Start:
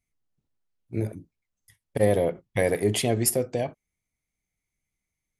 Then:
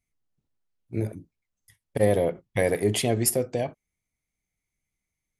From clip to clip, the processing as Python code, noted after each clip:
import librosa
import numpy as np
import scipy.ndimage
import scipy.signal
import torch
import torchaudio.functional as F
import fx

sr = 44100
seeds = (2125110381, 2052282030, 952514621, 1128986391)

y = x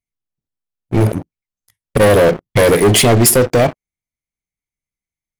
y = fx.leveller(x, sr, passes=5)
y = F.gain(torch.from_numpy(y), 2.0).numpy()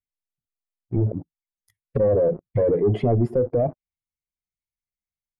y = fx.spec_expand(x, sr, power=1.6)
y = fx.env_lowpass_down(y, sr, base_hz=880.0, full_db=-12.0)
y = F.gain(torch.from_numpy(y), -8.5).numpy()